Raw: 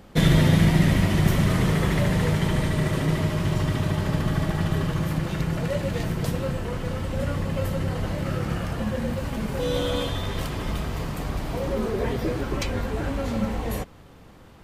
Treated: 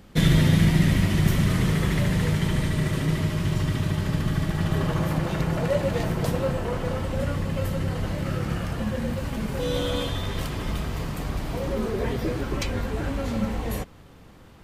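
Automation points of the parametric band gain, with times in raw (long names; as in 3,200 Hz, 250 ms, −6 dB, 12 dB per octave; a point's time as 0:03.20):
parametric band 700 Hz 1.8 octaves
0:04.50 −5.5 dB
0:04.91 +5 dB
0:06.92 +5 dB
0:07.41 −2 dB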